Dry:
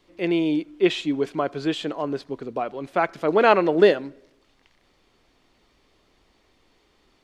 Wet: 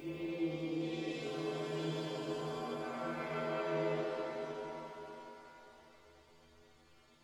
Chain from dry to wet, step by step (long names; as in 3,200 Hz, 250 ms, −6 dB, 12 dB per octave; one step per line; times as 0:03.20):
spectrum averaged block by block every 400 ms
downward compressor, threshold −34 dBFS, peak gain reduction 15 dB
stiff-string resonator 77 Hz, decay 0.67 s, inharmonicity 0.008
reverb with rising layers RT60 3.7 s, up +7 semitones, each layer −8 dB, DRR −9.5 dB